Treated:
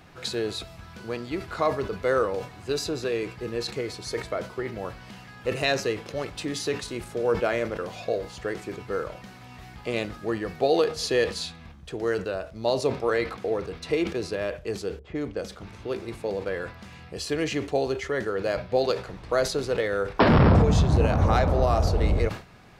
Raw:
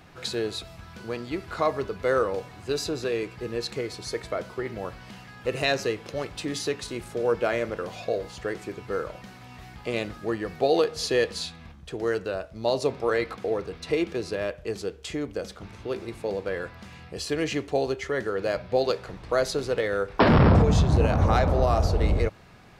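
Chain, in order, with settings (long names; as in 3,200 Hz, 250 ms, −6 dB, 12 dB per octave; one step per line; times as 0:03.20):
0:14.99–0:15.44: low-pass that shuts in the quiet parts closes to 310 Hz, open at −26 dBFS
level that may fall only so fast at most 150 dB per second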